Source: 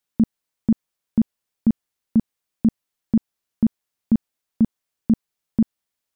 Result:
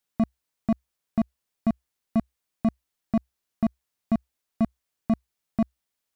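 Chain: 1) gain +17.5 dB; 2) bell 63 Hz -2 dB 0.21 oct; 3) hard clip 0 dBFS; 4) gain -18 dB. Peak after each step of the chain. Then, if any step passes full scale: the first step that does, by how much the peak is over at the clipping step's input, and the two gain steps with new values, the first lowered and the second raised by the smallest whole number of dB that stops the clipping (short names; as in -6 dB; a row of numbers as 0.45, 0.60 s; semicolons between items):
+7.5, +7.5, 0.0, -18.0 dBFS; step 1, 7.5 dB; step 1 +9.5 dB, step 4 -10 dB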